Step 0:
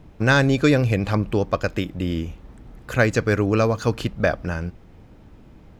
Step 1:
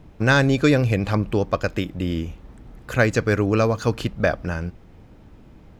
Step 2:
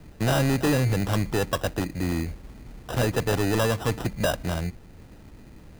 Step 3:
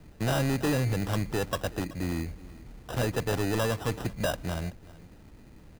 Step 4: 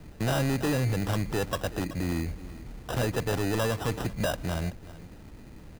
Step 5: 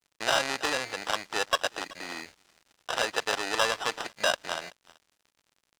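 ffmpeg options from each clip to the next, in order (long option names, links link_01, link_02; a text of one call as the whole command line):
ffmpeg -i in.wav -af anull out.wav
ffmpeg -i in.wav -filter_complex "[0:a]acrossover=split=170|870|3800[link_01][link_02][link_03][link_04];[link_04]alimiter=level_in=4.5dB:limit=-24dB:level=0:latency=1,volume=-4.5dB[link_05];[link_01][link_02][link_03][link_05]amix=inputs=4:normalize=0,acrusher=samples=20:mix=1:aa=0.000001,asoftclip=type=tanh:threshold=-17.5dB" out.wav
ffmpeg -i in.wav -af "aecho=1:1:379:0.1,volume=-4.5dB" out.wav
ffmpeg -i in.wav -af "alimiter=level_in=2.5dB:limit=-24dB:level=0:latency=1:release=87,volume=-2.5dB,volume=4.5dB" out.wav
ffmpeg -i in.wav -filter_complex "[0:a]highpass=750,lowpass=5800,asplit=2[link_01][link_02];[link_02]acrusher=bits=3:mix=0:aa=0.5,volume=-5.5dB[link_03];[link_01][link_03]amix=inputs=2:normalize=0,aeval=exprs='sgn(val(0))*max(abs(val(0))-0.00299,0)':channel_layout=same,volume=5.5dB" out.wav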